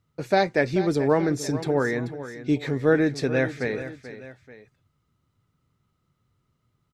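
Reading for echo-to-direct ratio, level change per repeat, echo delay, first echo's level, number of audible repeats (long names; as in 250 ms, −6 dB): −12.0 dB, −6.5 dB, 435 ms, −13.0 dB, 2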